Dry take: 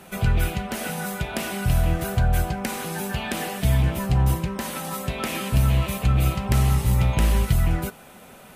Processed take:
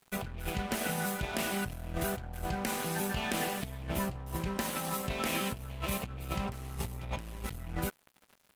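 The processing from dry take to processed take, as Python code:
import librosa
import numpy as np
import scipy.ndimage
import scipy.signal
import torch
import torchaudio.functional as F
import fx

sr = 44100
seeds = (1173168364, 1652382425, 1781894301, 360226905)

y = fx.dynamic_eq(x, sr, hz=130.0, q=1.3, threshold_db=-32.0, ratio=4.0, max_db=-3)
y = fx.over_compress(y, sr, threshold_db=-27.0, ratio=-1.0)
y = np.sign(y) * np.maximum(np.abs(y) - 10.0 ** (-36.5 / 20.0), 0.0)
y = F.gain(torch.from_numpy(y), -6.0).numpy()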